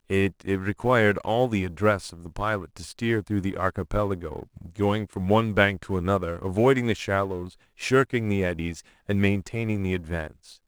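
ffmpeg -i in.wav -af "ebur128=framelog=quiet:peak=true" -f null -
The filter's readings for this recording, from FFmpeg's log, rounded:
Integrated loudness:
  I:         -25.4 LUFS
  Threshold: -35.8 LUFS
Loudness range:
  LRA:         3.6 LU
  Threshold: -45.7 LUFS
  LRA low:   -28.0 LUFS
  LRA high:  -24.4 LUFS
True peak:
  Peak:       -4.9 dBFS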